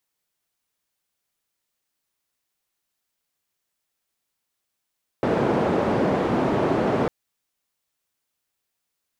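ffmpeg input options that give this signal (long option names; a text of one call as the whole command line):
ffmpeg -f lavfi -i "anoisesrc=color=white:duration=1.85:sample_rate=44100:seed=1,highpass=frequency=140,lowpass=frequency=540,volume=0.2dB" out.wav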